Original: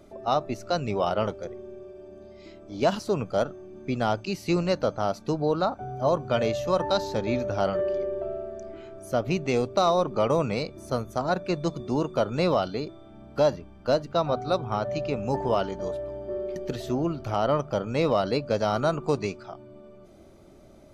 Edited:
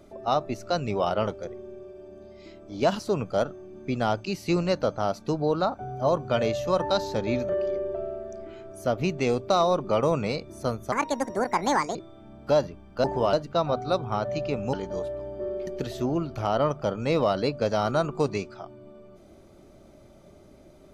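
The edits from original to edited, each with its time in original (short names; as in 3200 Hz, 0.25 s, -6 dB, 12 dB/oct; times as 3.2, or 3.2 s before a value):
7.49–7.76 cut
11.19–12.84 speed 160%
15.33–15.62 move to 13.93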